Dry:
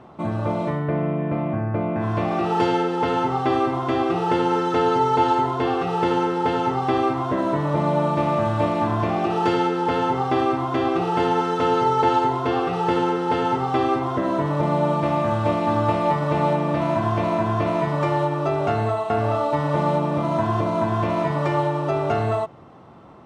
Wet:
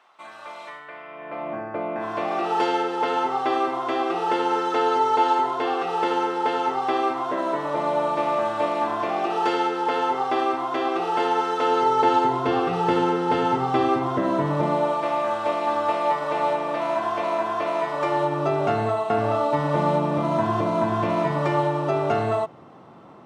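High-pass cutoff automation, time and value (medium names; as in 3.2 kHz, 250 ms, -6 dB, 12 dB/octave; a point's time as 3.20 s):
1.05 s 1.5 kHz
1.55 s 420 Hz
11.60 s 420 Hz
12.53 s 120 Hz
14.53 s 120 Hz
14.95 s 490 Hz
17.93 s 490 Hz
18.43 s 140 Hz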